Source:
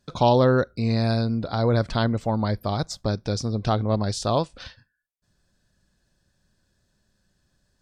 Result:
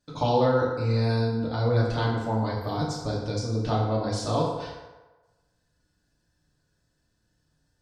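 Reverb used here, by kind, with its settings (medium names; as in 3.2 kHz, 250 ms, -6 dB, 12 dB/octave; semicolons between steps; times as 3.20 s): FDN reverb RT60 1.2 s, low-frequency decay 0.75×, high-frequency decay 0.6×, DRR -5.5 dB; trim -9 dB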